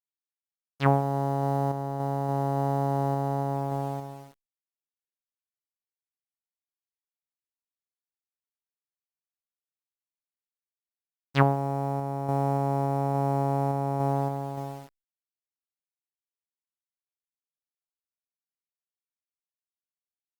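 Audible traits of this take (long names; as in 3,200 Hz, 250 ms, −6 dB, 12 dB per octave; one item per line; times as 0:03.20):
a quantiser's noise floor 8 bits, dither none
sample-and-hold tremolo
Opus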